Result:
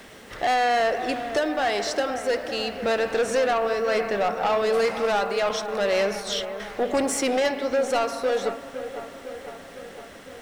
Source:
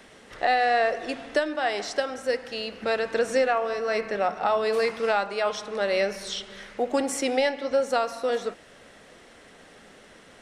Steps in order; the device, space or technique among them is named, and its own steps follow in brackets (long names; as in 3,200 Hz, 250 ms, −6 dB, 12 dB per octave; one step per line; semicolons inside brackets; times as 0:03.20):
0:05.49–0:06.60: noise gate −36 dBFS, range −12 dB
open-reel tape (soft clipping −23 dBFS, distortion −11 dB; parametric band 74 Hz +3 dB 1.16 octaves; white noise bed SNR 36 dB)
delay with a low-pass on its return 506 ms, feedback 65%, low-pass 2,000 Hz, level −11.5 dB
level +5 dB